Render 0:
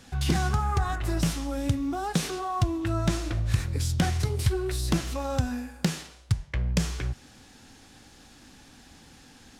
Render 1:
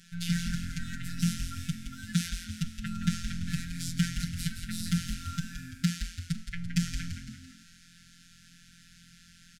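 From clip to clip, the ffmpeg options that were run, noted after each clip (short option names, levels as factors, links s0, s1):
-filter_complex "[0:a]afftfilt=real='hypot(re,im)*cos(PI*b)':imag='0':win_size=1024:overlap=0.75,asplit=7[s0][s1][s2][s3][s4][s5][s6];[s1]adelay=169,afreqshift=-130,volume=0.422[s7];[s2]adelay=338,afreqshift=-260,volume=0.211[s8];[s3]adelay=507,afreqshift=-390,volume=0.106[s9];[s4]adelay=676,afreqshift=-520,volume=0.0525[s10];[s5]adelay=845,afreqshift=-650,volume=0.0263[s11];[s6]adelay=1014,afreqshift=-780,volume=0.0132[s12];[s0][s7][s8][s9][s10][s11][s12]amix=inputs=7:normalize=0,afftfilt=real='re*(1-between(b*sr/4096,290,1300))':imag='im*(1-between(b*sr/4096,290,1300))':win_size=4096:overlap=0.75"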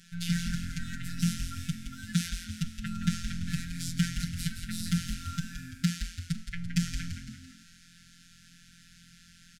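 -af anull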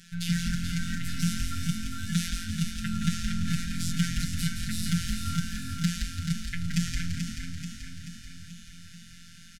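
-filter_complex "[0:a]asplit=2[s0][s1];[s1]alimiter=limit=0.106:level=0:latency=1:release=108,volume=0.794[s2];[s0][s2]amix=inputs=2:normalize=0,aecho=1:1:434|868|1302|1736|2170|2604|3038|3472:0.473|0.274|0.159|0.0923|0.0535|0.0311|0.018|0.0104,volume=0.841"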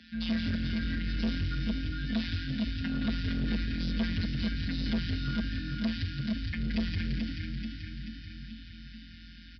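-af "afreqshift=50,aresample=11025,asoftclip=type=tanh:threshold=0.0631,aresample=44100"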